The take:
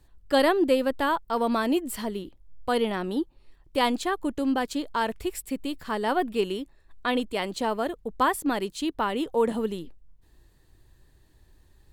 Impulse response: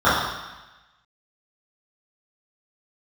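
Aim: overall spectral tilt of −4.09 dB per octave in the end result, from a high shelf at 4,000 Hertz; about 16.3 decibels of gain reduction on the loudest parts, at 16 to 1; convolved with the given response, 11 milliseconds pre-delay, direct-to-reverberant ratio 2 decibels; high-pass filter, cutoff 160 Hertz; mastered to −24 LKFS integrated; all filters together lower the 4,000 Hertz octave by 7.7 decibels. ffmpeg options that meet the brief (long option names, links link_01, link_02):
-filter_complex "[0:a]highpass=160,highshelf=frequency=4000:gain=-5,equalizer=frequency=4000:width_type=o:gain=-8,acompressor=threshold=-34dB:ratio=16,asplit=2[link_01][link_02];[1:a]atrim=start_sample=2205,adelay=11[link_03];[link_02][link_03]afir=irnorm=-1:irlink=0,volume=-27.5dB[link_04];[link_01][link_04]amix=inputs=2:normalize=0,volume=14dB"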